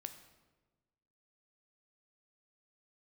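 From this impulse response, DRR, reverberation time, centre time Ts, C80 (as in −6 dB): 7.5 dB, 1.3 s, 13 ms, 12.0 dB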